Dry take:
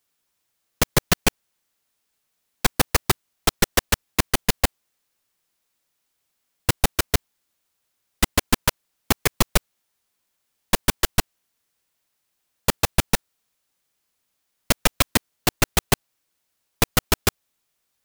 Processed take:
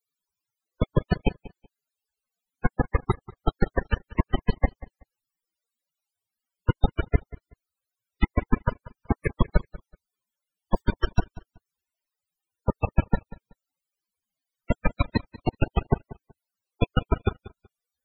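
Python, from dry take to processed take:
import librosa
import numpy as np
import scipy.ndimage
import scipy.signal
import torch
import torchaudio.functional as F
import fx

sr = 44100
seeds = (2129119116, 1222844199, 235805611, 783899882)

y = fx.echo_feedback(x, sr, ms=188, feedback_pct=20, wet_db=-19.0)
y = fx.mod_noise(y, sr, seeds[0], snr_db=21, at=(9.48, 10.82))
y = fx.spec_topn(y, sr, count=32)
y = fx.low_shelf(y, sr, hz=170.0, db=4.5)
y = y * 10.0 ** (-2.0 / 20.0)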